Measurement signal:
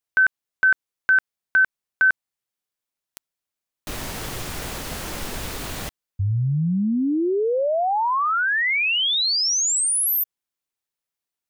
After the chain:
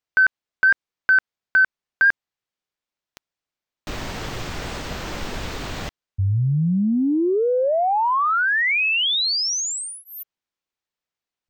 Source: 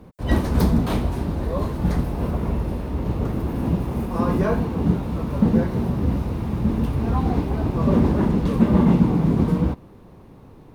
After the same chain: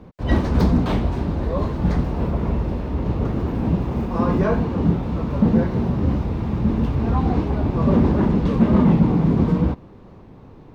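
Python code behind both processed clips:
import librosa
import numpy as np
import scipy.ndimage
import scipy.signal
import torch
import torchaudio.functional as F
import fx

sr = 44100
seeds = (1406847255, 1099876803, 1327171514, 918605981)

y = 10.0 ** (-6.5 / 20.0) * np.tanh(x / 10.0 ** (-6.5 / 20.0))
y = np.convolve(y, np.full(4, 1.0 / 4))[:len(y)]
y = fx.record_warp(y, sr, rpm=45.0, depth_cents=100.0)
y = y * librosa.db_to_amplitude(2.0)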